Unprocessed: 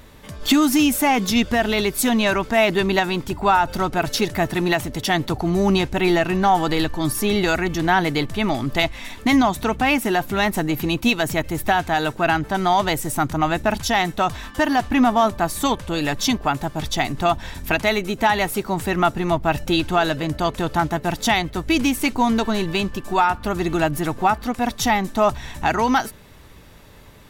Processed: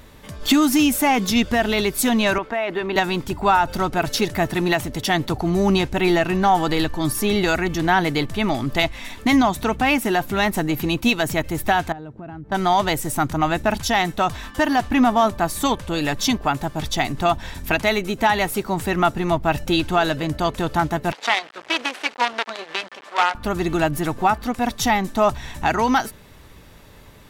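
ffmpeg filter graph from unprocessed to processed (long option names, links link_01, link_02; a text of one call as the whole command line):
ffmpeg -i in.wav -filter_complex "[0:a]asettb=1/sr,asplit=3[link_01][link_02][link_03];[link_01]atrim=end=2.384[link_04];[link_02]atrim=start=2.38:end=2.96,asetpts=PTS-STARTPTS,afade=type=in:duration=0.004:curve=qsin,afade=type=out:start_time=0.576:duration=0.004:curve=qsin,acrossover=split=310 3000:gain=0.251 1 0.158[link_05][link_06][link_07];[link_05][link_06][link_07]amix=inputs=3:normalize=0,acompressor=threshold=-18dB:ratio=6:attack=3.2:release=140:knee=1:detection=peak[link_08];[link_03]atrim=start=2.956[link_09];[link_04][link_08]acrossfade=duration=0.004:curve1=hsin:curve2=qsin[link_10];[link_10][link_09]acrossfade=duration=0.004:curve1=qsin:curve2=hsin,asettb=1/sr,asplit=3[link_11][link_12][link_13];[link_11]atrim=end=11.924[link_14];[link_12]atrim=start=11.92:end=12.52,asetpts=PTS-STARTPTS,afade=type=in:duration=0.004:curve=qsin,afade=type=out:start_time=0.596:duration=0.004:curve=qsin,bandpass=frequency=130:width_type=q:width=0.56,acompressor=threshold=-34dB:ratio=3:attack=3.2:release=140:knee=1:detection=peak[link_15];[link_13]atrim=start=12.516[link_16];[link_14][link_15]acrossfade=duration=0.004:curve1=hsin:curve2=qsin[link_17];[link_17][link_16]acrossfade=duration=0.004:curve1=qsin:curve2=hsin,asettb=1/sr,asplit=3[link_18][link_19][link_20];[link_18]atrim=end=21.124[link_21];[link_19]atrim=start=21.12:end=23.35,asetpts=PTS-STARTPTS,afade=type=in:duration=0.004:curve=qsin,afade=type=out:start_time=2.226:duration=0.004:curve=qsin,aemphasis=mode=production:type=cd,acrusher=bits=3:dc=4:mix=0:aa=0.000001,highpass=570,lowpass=3100[link_22];[link_20]atrim=start=23.346[link_23];[link_21][link_22]acrossfade=duration=0.004:curve1=hsin:curve2=qsin[link_24];[link_24][link_23]acrossfade=duration=0.004:curve1=qsin:curve2=hsin" out.wav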